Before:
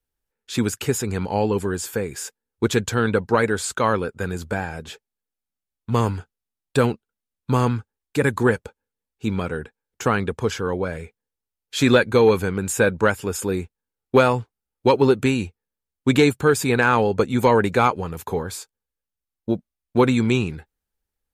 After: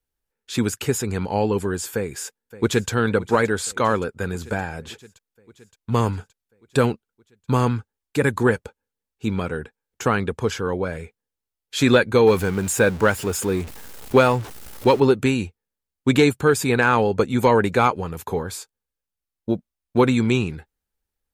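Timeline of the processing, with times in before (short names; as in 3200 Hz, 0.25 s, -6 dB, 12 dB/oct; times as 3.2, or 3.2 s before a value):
1.93–2.9 echo throw 0.57 s, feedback 70%, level -17 dB
12.27–15 zero-crossing step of -31 dBFS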